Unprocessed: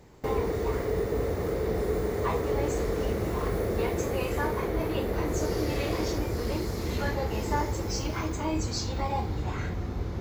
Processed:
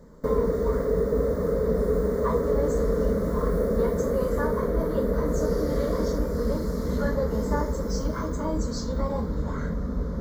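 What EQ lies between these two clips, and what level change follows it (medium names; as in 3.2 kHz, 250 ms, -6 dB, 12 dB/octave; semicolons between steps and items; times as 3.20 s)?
tilt shelf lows +5.5 dB, about 1.1 kHz; static phaser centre 520 Hz, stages 8; +3.5 dB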